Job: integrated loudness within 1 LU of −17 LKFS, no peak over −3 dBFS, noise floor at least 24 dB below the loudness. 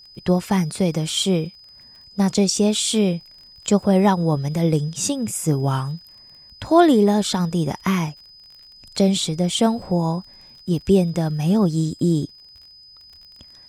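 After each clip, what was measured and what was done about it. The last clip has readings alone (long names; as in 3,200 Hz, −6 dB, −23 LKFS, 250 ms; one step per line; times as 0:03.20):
crackle rate 29 per second; interfering tone 5,000 Hz; level of the tone −44 dBFS; integrated loudness −20.0 LKFS; sample peak −2.5 dBFS; target loudness −17.0 LKFS
→ click removal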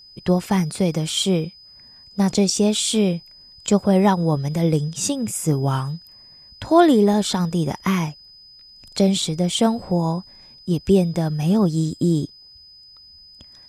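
crackle rate 0 per second; interfering tone 5,000 Hz; level of the tone −44 dBFS
→ notch filter 5,000 Hz, Q 30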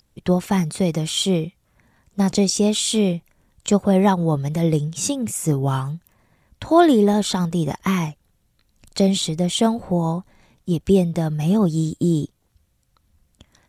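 interfering tone none found; integrated loudness −20.0 LKFS; sample peak −2.5 dBFS; target loudness −17.0 LKFS
→ level +3 dB
brickwall limiter −3 dBFS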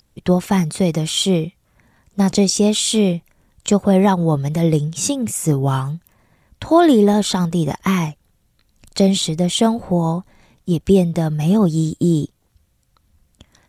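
integrated loudness −17.5 LKFS; sample peak −3.0 dBFS; background noise floor −62 dBFS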